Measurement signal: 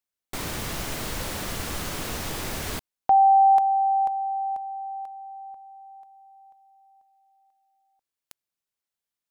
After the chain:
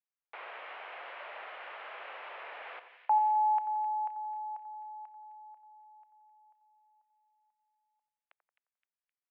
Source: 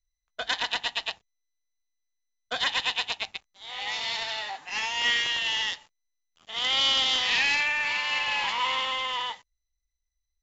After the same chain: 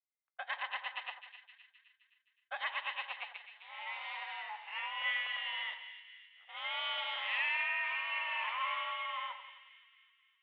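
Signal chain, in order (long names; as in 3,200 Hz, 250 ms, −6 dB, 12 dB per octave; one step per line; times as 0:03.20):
single-sideband voice off tune +75 Hz 500–2,700 Hz
echo with a time of its own for lows and highs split 1,700 Hz, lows 88 ms, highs 260 ms, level −10.5 dB
level −8 dB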